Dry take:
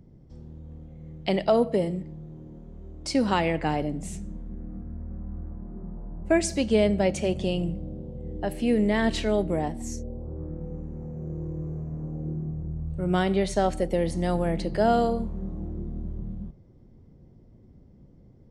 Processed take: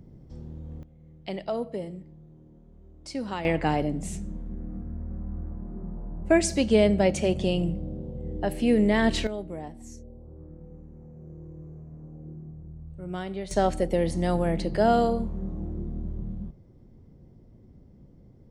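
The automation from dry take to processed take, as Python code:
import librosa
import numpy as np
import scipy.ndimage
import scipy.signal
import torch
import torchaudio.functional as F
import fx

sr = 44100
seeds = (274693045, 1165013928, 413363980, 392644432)

y = fx.gain(x, sr, db=fx.steps((0.0, 3.0), (0.83, -9.0), (3.45, 1.5), (9.27, -10.0), (13.51, 0.5)))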